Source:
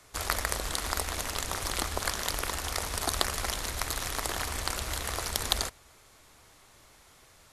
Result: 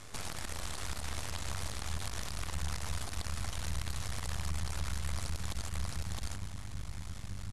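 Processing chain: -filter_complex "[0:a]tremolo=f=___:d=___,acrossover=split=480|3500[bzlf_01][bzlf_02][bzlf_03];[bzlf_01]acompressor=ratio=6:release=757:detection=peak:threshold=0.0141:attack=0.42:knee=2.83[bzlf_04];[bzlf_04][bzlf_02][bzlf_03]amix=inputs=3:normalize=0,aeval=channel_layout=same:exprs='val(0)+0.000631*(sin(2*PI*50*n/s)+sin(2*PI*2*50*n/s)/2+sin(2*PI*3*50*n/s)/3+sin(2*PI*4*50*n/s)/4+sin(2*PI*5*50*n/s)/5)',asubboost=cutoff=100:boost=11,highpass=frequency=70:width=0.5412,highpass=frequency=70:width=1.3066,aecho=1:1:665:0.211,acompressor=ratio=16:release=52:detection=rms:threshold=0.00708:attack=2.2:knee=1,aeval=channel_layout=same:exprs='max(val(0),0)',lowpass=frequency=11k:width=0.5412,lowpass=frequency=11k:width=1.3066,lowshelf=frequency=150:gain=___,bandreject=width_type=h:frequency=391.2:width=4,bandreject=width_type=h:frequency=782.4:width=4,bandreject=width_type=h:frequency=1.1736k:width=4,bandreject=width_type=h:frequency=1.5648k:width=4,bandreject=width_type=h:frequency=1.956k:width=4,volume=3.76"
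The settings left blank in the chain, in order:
95, 0.571, 7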